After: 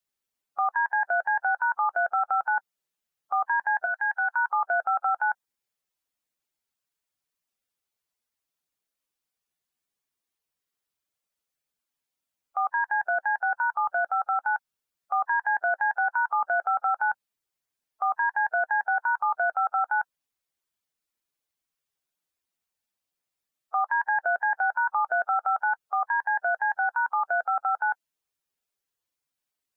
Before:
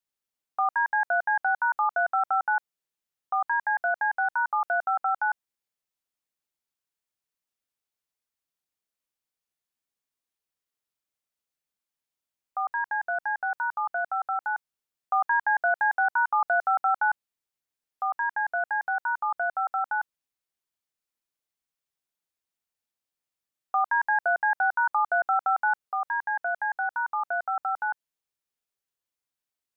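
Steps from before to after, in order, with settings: bin magnitudes rounded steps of 15 dB; 3.85–4.48 HPF 1500 Hz -> 900 Hz 12 dB/oct; limiter -20.5 dBFS, peak gain reduction 4.5 dB; gain +3 dB

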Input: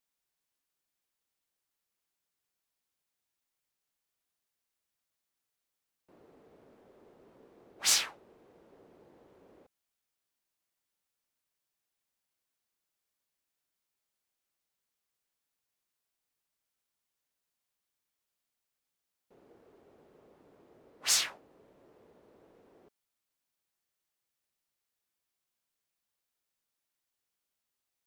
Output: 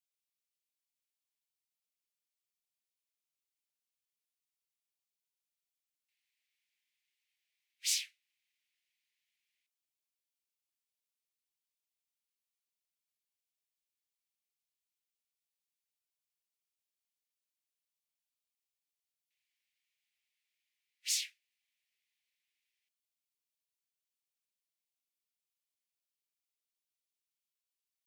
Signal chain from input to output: steep high-pass 2100 Hz 48 dB/oct; gain -6.5 dB

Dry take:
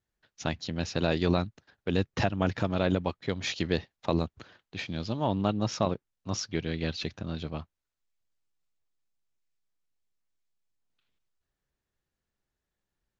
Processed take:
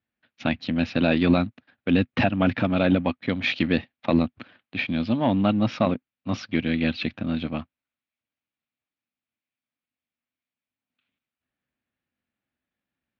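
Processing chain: sample leveller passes 1; speaker cabinet 110–3600 Hz, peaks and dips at 150 Hz -4 dB, 250 Hz +9 dB, 410 Hz -9 dB, 950 Hz -4 dB, 2400 Hz +5 dB; gain +3.5 dB

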